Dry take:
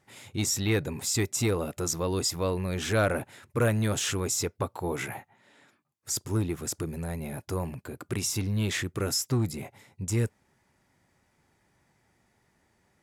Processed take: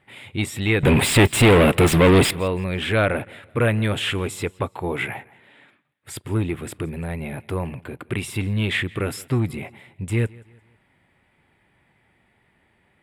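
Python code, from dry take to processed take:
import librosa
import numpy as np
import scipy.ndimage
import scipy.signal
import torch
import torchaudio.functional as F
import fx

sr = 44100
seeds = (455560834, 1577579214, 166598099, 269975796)

y = fx.leveller(x, sr, passes=5, at=(0.83, 2.31))
y = fx.curve_eq(y, sr, hz=(1400.0, 2200.0, 3300.0, 6200.0, 8800.0, 14000.0), db=(0, 6, 4, -22, -5, -12))
y = fx.echo_feedback(y, sr, ms=168, feedback_pct=39, wet_db=-23.5)
y = y * librosa.db_to_amplitude(5.0)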